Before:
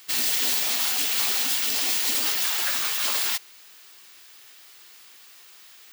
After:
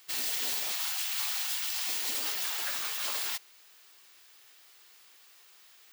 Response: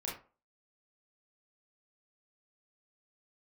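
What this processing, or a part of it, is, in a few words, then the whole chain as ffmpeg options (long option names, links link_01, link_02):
filter by subtraction: -filter_complex "[0:a]asettb=1/sr,asplit=3[link_01][link_02][link_03];[link_01]atrim=end=0.724[link_04];[link_02]atrim=start=0.72:end=1.89,asetpts=PTS-STARTPTS,afade=type=in:duration=0.004:curve=qsin,afade=type=out:start_time=1.166:duration=0.004:curve=qsin,highpass=frequency=780:width=0.5412,highpass=frequency=780:width=1.3066[link_05];[link_03]atrim=start=1.886[link_06];[link_04][link_05]acrossfade=duration=0.004:curve1=hsin:curve2=qsin[link_07];[link_07][link_06]acrossfade=duration=0.004:curve1=qsin:curve2=hsin,asplit=2[link_08][link_09];[link_09]lowpass=500,volume=-1[link_10];[link_08][link_10]amix=inputs=2:normalize=0,volume=-8.5dB"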